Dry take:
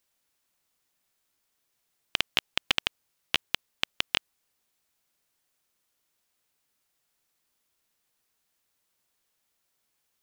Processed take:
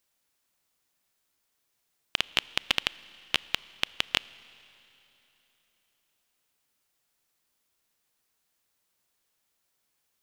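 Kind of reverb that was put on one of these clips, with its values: Schroeder reverb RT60 3.4 s, combs from 27 ms, DRR 19.5 dB

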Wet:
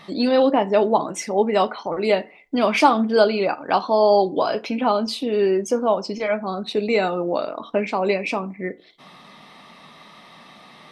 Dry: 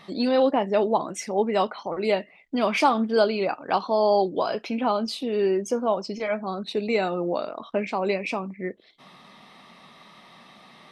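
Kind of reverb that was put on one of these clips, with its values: FDN reverb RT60 0.38 s, low-frequency decay 0.95×, high-frequency decay 0.55×, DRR 13.5 dB; trim +4 dB

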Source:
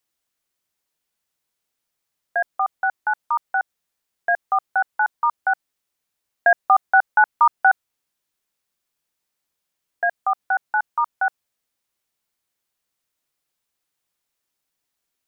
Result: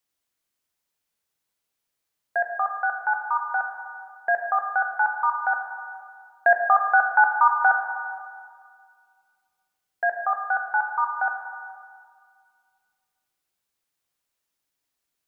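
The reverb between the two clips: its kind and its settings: plate-style reverb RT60 2 s, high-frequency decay 0.85×, DRR 3.5 dB; trim -3 dB

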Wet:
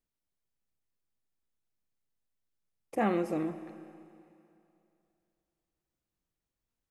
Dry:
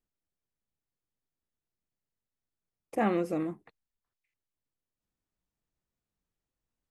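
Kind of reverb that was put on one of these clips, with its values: Schroeder reverb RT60 2.7 s, combs from 28 ms, DRR 11.5 dB; trim -1 dB

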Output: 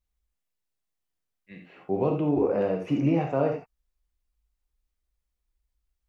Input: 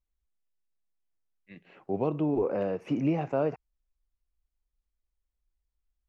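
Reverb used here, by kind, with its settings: gated-style reverb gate 110 ms flat, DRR 1.5 dB; trim +1.5 dB

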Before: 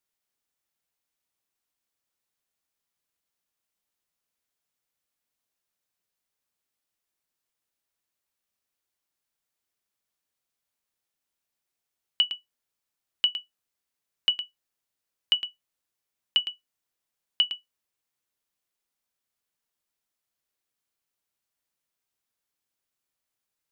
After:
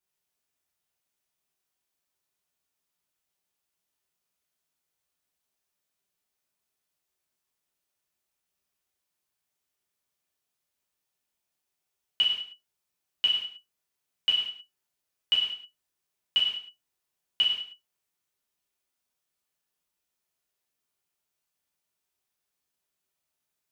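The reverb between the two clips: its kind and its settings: gated-style reverb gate 230 ms falling, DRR -6 dB; trim -5.5 dB

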